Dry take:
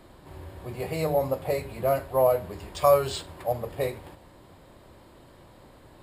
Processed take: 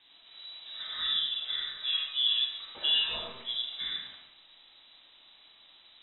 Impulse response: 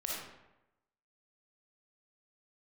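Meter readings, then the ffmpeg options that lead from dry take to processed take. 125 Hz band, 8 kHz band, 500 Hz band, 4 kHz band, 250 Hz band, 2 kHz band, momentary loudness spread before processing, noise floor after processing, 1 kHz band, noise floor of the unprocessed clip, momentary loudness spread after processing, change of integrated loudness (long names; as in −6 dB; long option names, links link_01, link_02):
below −25 dB, below −35 dB, −30.0 dB, +16.5 dB, below −20 dB, +0.5 dB, 18 LU, −59 dBFS, −20.0 dB, −53 dBFS, 16 LU, −3.0 dB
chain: -filter_complex "[0:a]lowpass=frequency=3400:width_type=q:width=0.5098,lowpass=frequency=3400:width_type=q:width=0.6013,lowpass=frequency=3400:width_type=q:width=0.9,lowpass=frequency=3400:width_type=q:width=2.563,afreqshift=-4000,highshelf=frequency=2300:gain=-11[link_01];[1:a]atrim=start_sample=2205[link_02];[link_01][link_02]afir=irnorm=-1:irlink=0"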